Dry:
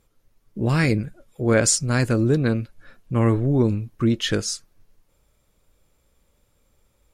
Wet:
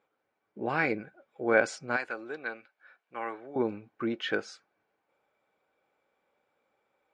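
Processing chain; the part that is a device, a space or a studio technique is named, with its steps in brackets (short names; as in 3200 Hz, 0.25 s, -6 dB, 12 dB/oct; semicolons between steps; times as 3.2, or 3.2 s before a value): 1.96–3.56 HPF 1500 Hz 6 dB/oct; tin-can telephone (BPF 400–2200 Hz; small resonant body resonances 790/1500/2300 Hz, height 10 dB); gain -3.5 dB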